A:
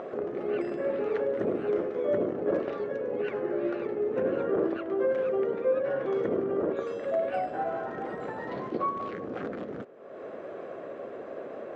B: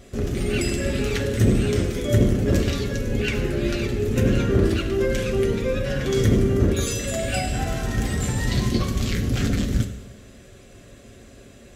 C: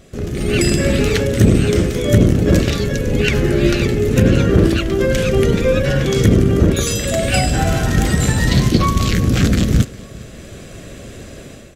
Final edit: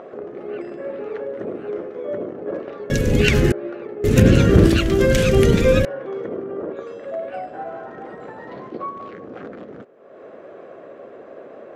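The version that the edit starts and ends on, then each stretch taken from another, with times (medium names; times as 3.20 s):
A
2.90–3.52 s: from C
4.04–5.85 s: from C
not used: B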